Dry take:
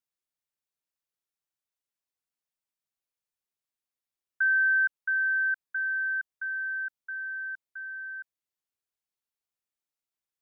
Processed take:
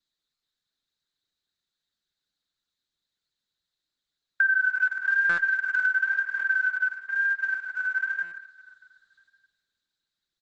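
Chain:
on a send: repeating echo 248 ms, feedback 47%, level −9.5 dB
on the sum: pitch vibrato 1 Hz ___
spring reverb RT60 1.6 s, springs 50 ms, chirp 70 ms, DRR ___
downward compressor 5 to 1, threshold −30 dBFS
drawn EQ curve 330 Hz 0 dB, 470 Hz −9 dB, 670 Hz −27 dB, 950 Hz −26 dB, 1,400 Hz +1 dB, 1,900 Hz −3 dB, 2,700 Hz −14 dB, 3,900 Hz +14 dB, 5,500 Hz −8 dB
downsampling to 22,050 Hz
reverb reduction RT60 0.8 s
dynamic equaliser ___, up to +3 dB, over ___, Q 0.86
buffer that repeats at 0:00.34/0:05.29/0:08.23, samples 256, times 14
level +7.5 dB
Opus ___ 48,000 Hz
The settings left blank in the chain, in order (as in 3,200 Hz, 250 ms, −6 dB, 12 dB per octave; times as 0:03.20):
49 cents, −0.5 dB, 1,400 Hz, −44 dBFS, 10 kbit/s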